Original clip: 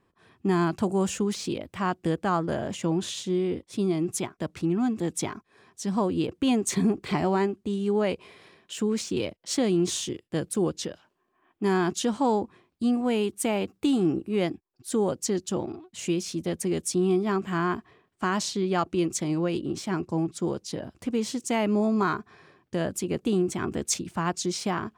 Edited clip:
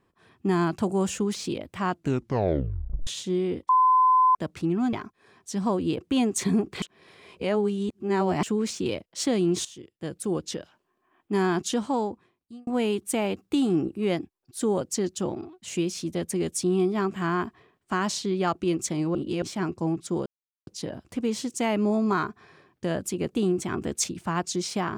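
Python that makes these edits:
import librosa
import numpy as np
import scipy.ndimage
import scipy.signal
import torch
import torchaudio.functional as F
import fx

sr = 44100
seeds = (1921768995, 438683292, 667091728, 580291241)

y = fx.edit(x, sr, fx.tape_stop(start_s=1.91, length_s=1.16),
    fx.bleep(start_s=3.69, length_s=0.66, hz=1020.0, db=-15.5),
    fx.cut(start_s=4.93, length_s=0.31),
    fx.reverse_span(start_s=7.13, length_s=1.61),
    fx.fade_in_from(start_s=9.96, length_s=0.91, floor_db=-17.0),
    fx.fade_out_span(start_s=12.02, length_s=0.96),
    fx.reverse_span(start_s=19.46, length_s=0.27),
    fx.insert_silence(at_s=20.57, length_s=0.41), tone=tone)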